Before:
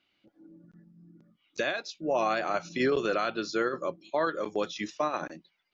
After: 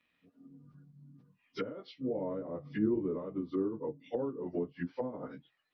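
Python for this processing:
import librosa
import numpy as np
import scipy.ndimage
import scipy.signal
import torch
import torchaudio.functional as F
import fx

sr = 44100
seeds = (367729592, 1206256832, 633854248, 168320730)

y = fx.pitch_bins(x, sr, semitones=-3.0)
y = fx.env_lowpass_down(y, sr, base_hz=380.0, full_db=-29.5)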